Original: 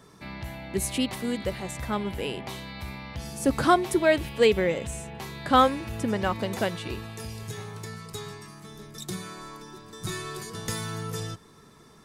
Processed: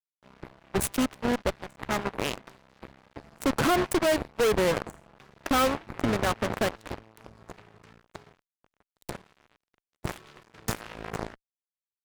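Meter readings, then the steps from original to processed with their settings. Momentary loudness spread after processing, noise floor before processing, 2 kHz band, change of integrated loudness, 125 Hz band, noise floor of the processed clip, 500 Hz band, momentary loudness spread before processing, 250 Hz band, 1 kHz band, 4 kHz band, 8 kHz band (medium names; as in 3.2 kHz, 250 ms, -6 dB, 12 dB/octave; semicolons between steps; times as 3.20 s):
19 LU, -53 dBFS, -1.0 dB, 0.0 dB, -3.0 dB, under -85 dBFS, -2.0 dB, 18 LU, -1.5 dB, -3.5 dB, -2.0 dB, -1.0 dB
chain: local Wiener filter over 15 samples; fuzz box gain 28 dB, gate -37 dBFS; Chebyshev shaper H 3 -8 dB, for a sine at -10 dBFS; trim -1.5 dB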